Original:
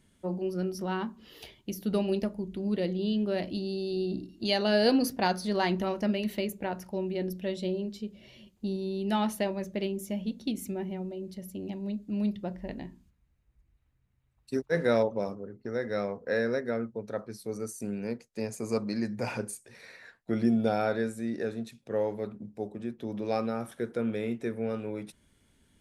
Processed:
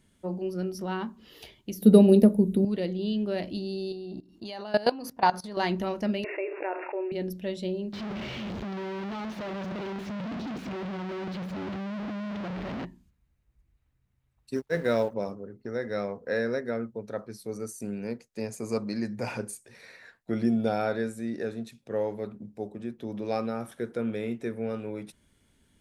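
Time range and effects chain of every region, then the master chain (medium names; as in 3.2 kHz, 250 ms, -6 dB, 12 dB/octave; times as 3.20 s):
1.82–2.65 s: resonant high shelf 7.7 kHz +13.5 dB, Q 1.5 + small resonant body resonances 230/440/3800 Hz, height 15 dB, ringing for 25 ms
3.92–5.57 s: peaking EQ 970 Hz +11.5 dB 1 oct + level held to a coarse grid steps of 19 dB
6.24–7.12 s: zero-crossing glitches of -36.5 dBFS + brick-wall FIR band-pass 300–2800 Hz + level flattener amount 70%
7.93–12.85 s: one-bit comparator + high-pass 59 Hz + distance through air 240 m
14.56–15.14 s: companding laws mixed up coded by A + band-stop 820 Hz, Q 20
whole clip: none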